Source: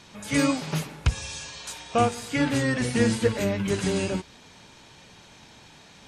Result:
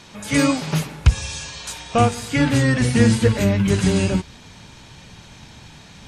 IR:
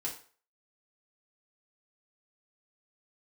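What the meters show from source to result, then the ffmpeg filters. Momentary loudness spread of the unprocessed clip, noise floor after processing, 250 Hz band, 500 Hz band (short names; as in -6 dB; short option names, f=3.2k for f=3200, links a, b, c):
11 LU, -44 dBFS, +7.0 dB, +4.0 dB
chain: -af "acontrast=39,asubboost=boost=2.5:cutoff=220"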